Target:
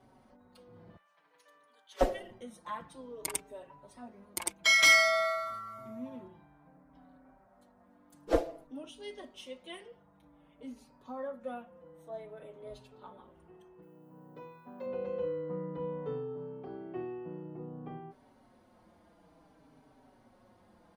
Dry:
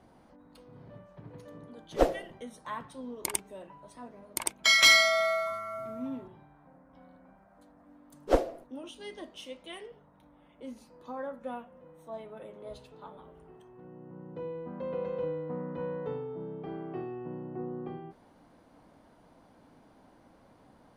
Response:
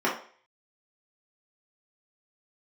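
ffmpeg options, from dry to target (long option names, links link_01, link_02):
-filter_complex "[0:a]asettb=1/sr,asplit=3[link_01][link_02][link_03];[link_01]atrim=end=0.964[link_04];[link_02]atrim=start=0.96:end=2.01,asetpts=PTS-STARTPTS,afade=type=in:duration=0.004:curve=qsin,afade=type=out:start_time=1.046:duration=0.004:curve=qsin,highpass=1300[link_05];[link_03]atrim=start=2.006[link_06];[link_04][link_05]acrossfade=duration=0.004:curve1=hsin:curve2=qsin[link_07];[link_07][link_06]acrossfade=duration=0.004:curve1=qsin:curve2=hsin,asettb=1/sr,asplit=3[link_08][link_09][link_10];[link_08]atrim=end=13.824[link_11];[link_09]atrim=start=13.82:end=14.86,asetpts=PTS-STARTPTS,afade=type=in:duration=0.004:curve=qsin,afade=type=out:start_time=1.036:duration=0.004:curve=qsin,aemphasis=mode=production:type=bsi[link_12];[link_10]atrim=start=14.856[link_13];[link_11][link_12]acrossfade=duration=0.004:curve1=hsin:curve2=qsin[link_14];[link_14][link_13]acrossfade=duration=0.004:curve1=qsin:curve2=hsin,asplit=2[link_15][link_16];[link_16]adelay=4.8,afreqshift=-0.55[link_17];[link_15][link_17]amix=inputs=2:normalize=1"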